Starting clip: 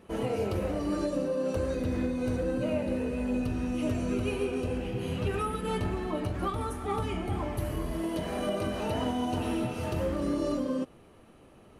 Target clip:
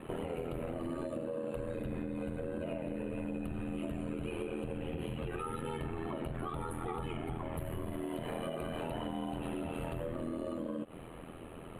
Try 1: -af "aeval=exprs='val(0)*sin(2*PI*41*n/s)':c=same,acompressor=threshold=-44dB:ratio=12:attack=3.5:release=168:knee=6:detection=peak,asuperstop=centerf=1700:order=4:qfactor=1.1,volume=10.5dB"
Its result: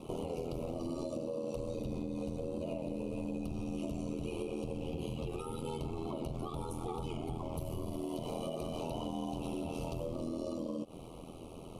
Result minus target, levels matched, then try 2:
2000 Hz band -7.5 dB
-af "aeval=exprs='val(0)*sin(2*PI*41*n/s)':c=same,acompressor=threshold=-44dB:ratio=12:attack=3.5:release=168:knee=6:detection=peak,asuperstop=centerf=5500:order=4:qfactor=1.1,volume=10.5dB"

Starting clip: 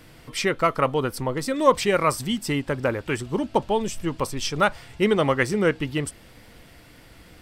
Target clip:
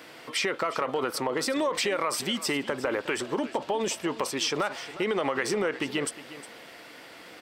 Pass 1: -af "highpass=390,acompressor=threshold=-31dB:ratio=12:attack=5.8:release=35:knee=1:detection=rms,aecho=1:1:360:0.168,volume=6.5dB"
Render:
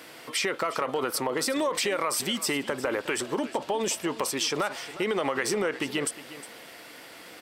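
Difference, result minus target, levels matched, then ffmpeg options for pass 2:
8000 Hz band +3.0 dB
-af "highpass=390,equalizer=f=12k:w=0.57:g=-8,acompressor=threshold=-31dB:ratio=12:attack=5.8:release=35:knee=1:detection=rms,aecho=1:1:360:0.168,volume=6.5dB"

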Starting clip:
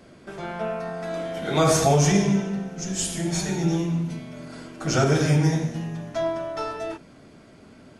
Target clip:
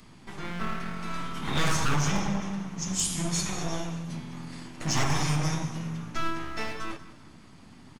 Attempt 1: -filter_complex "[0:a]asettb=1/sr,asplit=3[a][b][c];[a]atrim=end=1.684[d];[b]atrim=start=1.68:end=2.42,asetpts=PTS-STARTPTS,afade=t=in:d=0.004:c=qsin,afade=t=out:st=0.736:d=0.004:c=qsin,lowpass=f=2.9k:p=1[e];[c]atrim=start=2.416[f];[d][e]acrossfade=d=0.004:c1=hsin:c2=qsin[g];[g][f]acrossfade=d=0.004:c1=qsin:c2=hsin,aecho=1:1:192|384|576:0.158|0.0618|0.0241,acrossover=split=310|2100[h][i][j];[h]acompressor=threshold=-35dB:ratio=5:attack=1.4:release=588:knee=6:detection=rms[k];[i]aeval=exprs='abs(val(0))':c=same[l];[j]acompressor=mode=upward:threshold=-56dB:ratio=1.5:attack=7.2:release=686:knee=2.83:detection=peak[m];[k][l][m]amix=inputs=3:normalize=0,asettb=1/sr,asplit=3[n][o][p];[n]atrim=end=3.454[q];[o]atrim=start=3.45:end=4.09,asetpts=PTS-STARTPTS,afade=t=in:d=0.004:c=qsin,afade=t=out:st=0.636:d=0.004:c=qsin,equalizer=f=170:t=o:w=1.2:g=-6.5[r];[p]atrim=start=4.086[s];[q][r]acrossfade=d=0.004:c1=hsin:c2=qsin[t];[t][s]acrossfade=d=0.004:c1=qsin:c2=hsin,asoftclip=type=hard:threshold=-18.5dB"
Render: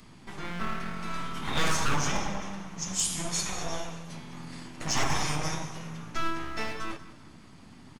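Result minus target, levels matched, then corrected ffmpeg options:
compressor: peak gain reduction +9 dB
-filter_complex "[0:a]asettb=1/sr,asplit=3[a][b][c];[a]atrim=end=1.684[d];[b]atrim=start=1.68:end=2.42,asetpts=PTS-STARTPTS,afade=t=in:d=0.004:c=qsin,afade=t=out:st=0.736:d=0.004:c=qsin,lowpass=f=2.9k:p=1[e];[c]atrim=start=2.416[f];[d][e]acrossfade=d=0.004:c1=hsin:c2=qsin[g];[g][f]acrossfade=d=0.004:c1=qsin:c2=hsin,aecho=1:1:192|384|576:0.158|0.0618|0.0241,acrossover=split=310|2100[h][i][j];[h]acompressor=threshold=-24dB:ratio=5:attack=1.4:release=588:knee=6:detection=rms[k];[i]aeval=exprs='abs(val(0))':c=same[l];[j]acompressor=mode=upward:threshold=-56dB:ratio=1.5:attack=7.2:release=686:knee=2.83:detection=peak[m];[k][l][m]amix=inputs=3:normalize=0,asettb=1/sr,asplit=3[n][o][p];[n]atrim=end=3.454[q];[o]atrim=start=3.45:end=4.09,asetpts=PTS-STARTPTS,afade=t=in:d=0.004:c=qsin,afade=t=out:st=0.636:d=0.004:c=qsin,equalizer=f=170:t=o:w=1.2:g=-6.5[r];[p]atrim=start=4.086[s];[q][r]acrossfade=d=0.004:c1=hsin:c2=qsin[t];[t][s]acrossfade=d=0.004:c1=qsin:c2=hsin,asoftclip=type=hard:threshold=-18.5dB"

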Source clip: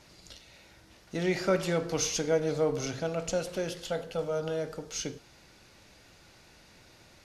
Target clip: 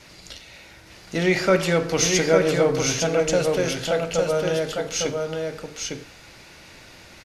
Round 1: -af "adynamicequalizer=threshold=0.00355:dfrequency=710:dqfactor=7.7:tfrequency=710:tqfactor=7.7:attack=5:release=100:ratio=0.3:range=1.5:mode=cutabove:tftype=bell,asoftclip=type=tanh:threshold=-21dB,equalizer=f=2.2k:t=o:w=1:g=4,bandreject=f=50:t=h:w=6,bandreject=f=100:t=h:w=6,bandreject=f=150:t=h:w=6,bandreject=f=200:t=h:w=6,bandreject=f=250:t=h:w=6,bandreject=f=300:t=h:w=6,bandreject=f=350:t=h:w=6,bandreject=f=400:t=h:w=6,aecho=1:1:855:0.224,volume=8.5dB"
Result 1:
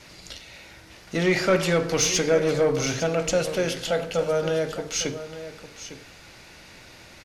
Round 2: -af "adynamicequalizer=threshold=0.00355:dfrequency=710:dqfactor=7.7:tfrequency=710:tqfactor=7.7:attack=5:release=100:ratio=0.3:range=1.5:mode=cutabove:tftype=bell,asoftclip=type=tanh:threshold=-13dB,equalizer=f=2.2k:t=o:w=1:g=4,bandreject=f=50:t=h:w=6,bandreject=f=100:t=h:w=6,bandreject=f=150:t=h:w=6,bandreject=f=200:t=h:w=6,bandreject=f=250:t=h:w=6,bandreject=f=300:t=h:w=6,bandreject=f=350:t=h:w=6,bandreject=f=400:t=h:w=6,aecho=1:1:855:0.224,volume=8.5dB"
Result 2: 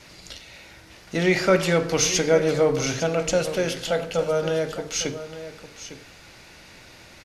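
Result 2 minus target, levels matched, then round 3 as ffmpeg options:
echo-to-direct -9 dB
-af "adynamicequalizer=threshold=0.00355:dfrequency=710:dqfactor=7.7:tfrequency=710:tqfactor=7.7:attack=5:release=100:ratio=0.3:range=1.5:mode=cutabove:tftype=bell,asoftclip=type=tanh:threshold=-13dB,equalizer=f=2.2k:t=o:w=1:g=4,bandreject=f=50:t=h:w=6,bandreject=f=100:t=h:w=6,bandreject=f=150:t=h:w=6,bandreject=f=200:t=h:w=6,bandreject=f=250:t=h:w=6,bandreject=f=300:t=h:w=6,bandreject=f=350:t=h:w=6,bandreject=f=400:t=h:w=6,aecho=1:1:855:0.631,volume=8.5dB"

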